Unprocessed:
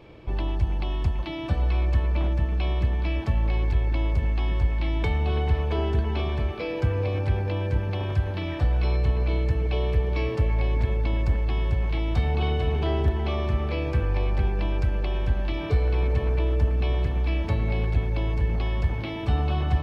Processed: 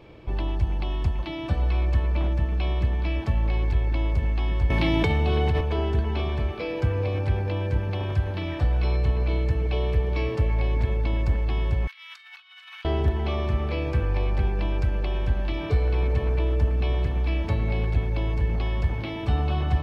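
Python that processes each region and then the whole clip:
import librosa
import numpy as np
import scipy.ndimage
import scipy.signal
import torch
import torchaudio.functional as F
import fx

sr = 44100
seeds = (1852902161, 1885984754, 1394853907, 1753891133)

y = fx.chain(x, sr, fx.highpass(hz=78.0, slope=24),
    fx.peak_eq(hz=1200.0, db=-3.0, octaves=2.3),
    fx.env_flatten(amount_pct=100), at=(4.7, 5.61))
y = fx.chain(y, sr, fx.steep_highpass(hz=1300.0, slope=36),
    fx.over_compress(threshold_db=-45.0, ratio=-0.5), at=(11.87, 12.85))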